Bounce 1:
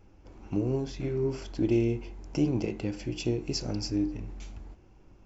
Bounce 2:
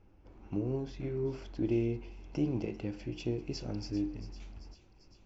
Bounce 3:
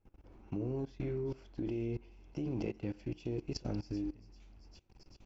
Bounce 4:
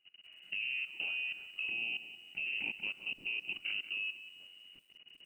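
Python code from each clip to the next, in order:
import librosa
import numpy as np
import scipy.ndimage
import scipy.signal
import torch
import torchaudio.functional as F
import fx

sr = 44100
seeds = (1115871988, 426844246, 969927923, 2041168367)

y1 = fx.air_absorb(x, sr, metres=120.0)
y1 = fx.echo_wet_highpass(y1, sr, ms=393, feedback_pct=65, hz=2600.0, wet_db=-12.0)
y1 = F.gain(torch.from_numpy(y1), -5.0).numpy()
y2 = fx.level_steps(y1, sr, step_db=20)
y2 = F.gain(torch.from_numpy(y2), 4.0).numpy()
y3 = fx.freq_invert(y2, sr, carrier_hz=2900)
y3 = fx.peak_eq(y3, sr, hz=270.0, db=4.5, octaves=2.6)
y3 = fx.echo_crushed(y3, sr, ms=182, feedback_pct=35, bits=10, wet_db=-12.5)
y3 = F.gain(torch.from_numpy(y3), -1.5).numpy()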